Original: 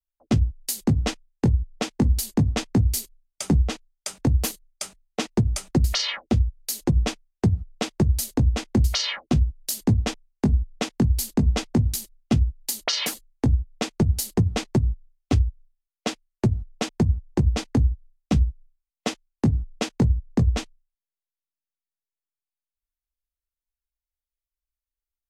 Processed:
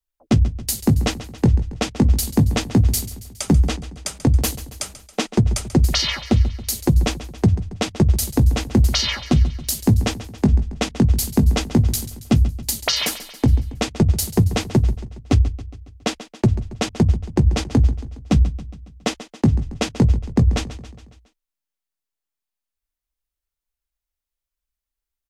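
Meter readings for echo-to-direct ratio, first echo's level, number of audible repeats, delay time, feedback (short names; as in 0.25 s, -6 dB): -13.5 dB, -15.0 dB, 4, 0.138 s, 55%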